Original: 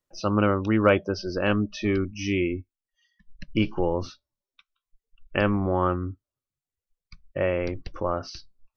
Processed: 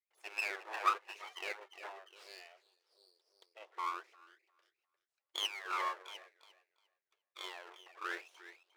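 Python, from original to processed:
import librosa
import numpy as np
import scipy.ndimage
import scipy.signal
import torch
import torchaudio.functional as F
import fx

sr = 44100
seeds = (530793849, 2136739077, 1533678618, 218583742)

y = fx.wah_lfo(x, sr, hz=0.98, low_hz=570.0, high_hz=1600.0, q=20.0)
y = fx.echo_stepped(y, sr, ms=351, hz=1200.0, octaves=0.7, feedback_pct=70, wet_db=-10.0)
y = np.abs(y)
y = fx.brickwall_highpass(y, sr, low_hz=330.0)
y = F.gain(torch.from_numpy(y), 9.5).numpy()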